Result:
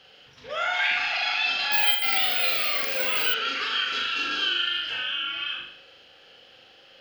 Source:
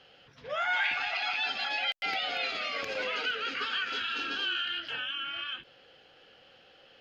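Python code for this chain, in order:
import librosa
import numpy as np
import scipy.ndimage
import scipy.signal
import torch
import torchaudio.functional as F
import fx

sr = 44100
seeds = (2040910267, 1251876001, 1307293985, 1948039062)

p1 = fx.high_shelf(x, sr, hz=2600.0, db=8.0)
p2 = p1 + fx.room_flutter(p1, sr, wall_m=6.9, rt60_s=0.65, dry=0)
y = fx.resample_bad(p2, sr, factor=2, down='filtered', up='zero_stuff', at=(1.72, 3.34))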